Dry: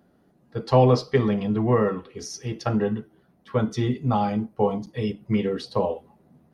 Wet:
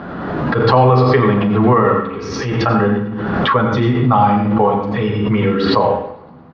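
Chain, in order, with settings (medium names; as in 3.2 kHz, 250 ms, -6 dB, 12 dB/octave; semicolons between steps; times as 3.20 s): companding laws mixed up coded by mu; low-pass 3.8 kHz 24 dB/octave; peaking EQ 1.2 kHz +11.5 dB 1.1 oct; doubling 40 ms -12 dB; thinning echo 112 ms, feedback 64%, high-pass 200 Hz, level -23 dB; reverberation RT60 0.45 s, pre-delay 80 ms, DRR 4.5 dB; loudness maximiser +7 dB; swell ahead of each attack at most 28 dB/s; trim -2 dB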